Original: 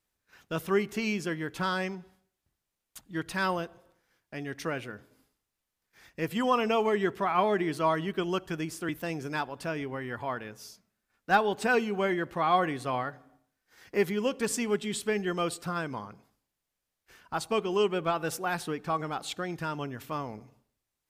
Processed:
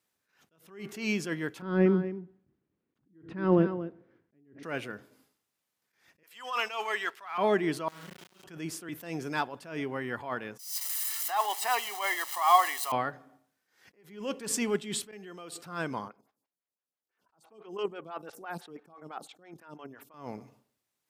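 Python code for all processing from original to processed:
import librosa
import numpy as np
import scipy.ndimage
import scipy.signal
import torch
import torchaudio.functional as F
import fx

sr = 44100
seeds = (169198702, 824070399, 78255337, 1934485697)

y = fx.chain(x, sr, fx.lowpass(hz=1800.0, slope=12),
    fx.low_shelf_res(hz=500.0, db=11.0, q=1.5),
    fx.echo_single(ms=234, db=-13.5), at=(1.62, 4.63))
y = fx.chain(y, sr, fx.highpass(hz=1100.0, slope=12),
    fx.leveller(passes=1), at=(6.23, 7.38))
y = fx.chain(y, sr, fx.tone_stack(knobs='6-0-2'),
    fx.room_flutter(wall_m=6.3, rt60_s=0.98),
    fx.sample_gate(floor_db=-44.5), at=(7.88, 8.44))
y = fx.chain(y, sr, fx.crossing_spikes(level_db=-28.5),
    fx.highpass(hz=570.0, slope=24),
    fx.comb(ms=1.0, depth=0.76), at=(10.59, 12.92))
y = fx.chain(y, sr, fx.high_shelf(hz=9200.0, db=5.0),
    fx.level_steps(step_db=23),
    fx.highpass(hz=170.0, slope=12), at=(15.11, 15.52))
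y = fx.chain(y, sr, fx.level_steps(step_db=12),
    fx.stagger_phaser(hz=6.0), at=(16.08, 20.14))
y = scipy.signal.sosfilt(scipy.signal.butter(2, 140.0, 'highpass', fs=sr, output='sos'), y)
y = fx.attack_slew(y, sr, db_per_s=110.0)
y = F.gain(torch.from_numpy(y), 2.0).numpy()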